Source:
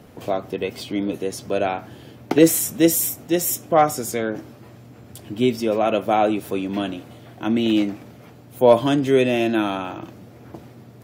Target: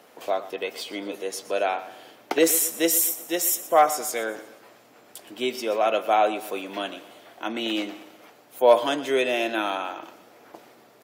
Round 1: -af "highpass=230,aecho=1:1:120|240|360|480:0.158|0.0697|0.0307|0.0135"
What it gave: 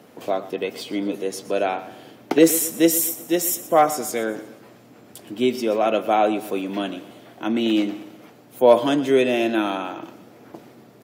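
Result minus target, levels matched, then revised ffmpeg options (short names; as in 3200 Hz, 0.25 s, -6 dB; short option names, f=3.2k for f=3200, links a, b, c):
250 Hz band +6.5 dB
-af "highpass=550,aecho=1:1:120|240|360|480:0.158|0.0697|0.0307|0.0135"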